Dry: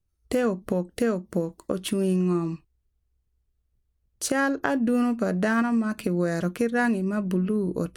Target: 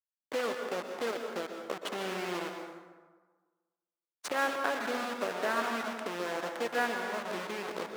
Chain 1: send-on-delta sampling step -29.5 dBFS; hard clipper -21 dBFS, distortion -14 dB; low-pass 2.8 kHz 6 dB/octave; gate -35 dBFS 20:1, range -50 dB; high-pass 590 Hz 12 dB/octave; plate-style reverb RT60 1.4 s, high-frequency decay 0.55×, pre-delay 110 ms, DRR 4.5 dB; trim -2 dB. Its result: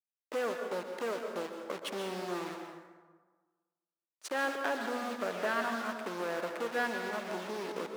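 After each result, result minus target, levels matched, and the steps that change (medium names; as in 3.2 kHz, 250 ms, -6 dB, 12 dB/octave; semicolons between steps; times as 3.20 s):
hard clipper: distortion +20 dB; send-on-delta sampling: distortion -6 dB
change: hard clipper -13.5 dBFS, distortion -34 dB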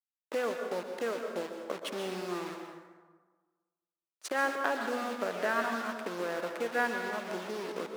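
send-on-delta sampling: distortion -6 dB
change: send-on-delta sampling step -23.5 dBFS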